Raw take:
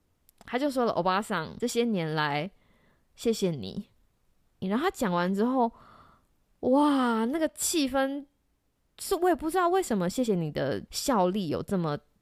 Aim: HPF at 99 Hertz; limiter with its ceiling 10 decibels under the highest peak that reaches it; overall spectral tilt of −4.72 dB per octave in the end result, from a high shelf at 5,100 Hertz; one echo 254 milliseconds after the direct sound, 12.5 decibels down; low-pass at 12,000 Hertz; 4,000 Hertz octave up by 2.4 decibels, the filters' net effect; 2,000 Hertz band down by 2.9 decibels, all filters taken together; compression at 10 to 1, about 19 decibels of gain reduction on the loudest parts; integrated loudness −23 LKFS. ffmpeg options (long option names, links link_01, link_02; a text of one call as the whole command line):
ffmpeg -i in.wav -af "highpass=99,lowpass=12000,equalizer=frequency=2000:width_type=o:gain=-4.5,equalizer=frequency=4000:width_type=o:gain=8.5,highshelf=frequency=5100:gain=-8.5,acompressor=threshold=-39dB:ratio=10,alimiter=level_in=13dB:limit=-24dB:level=0:latency=1,volume=-13dB,aecho=1:1:254:0.237,volume=23.5dB" out.wav